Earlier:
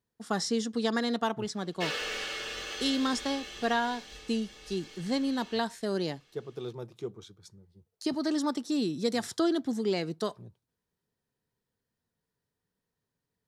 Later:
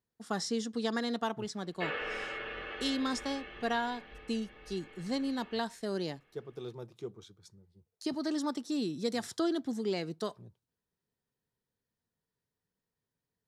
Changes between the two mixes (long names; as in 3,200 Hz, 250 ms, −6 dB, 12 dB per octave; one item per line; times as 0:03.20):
speech −4.0 dB
background: add low-pass filter 2,400 Hz 24 dB per octave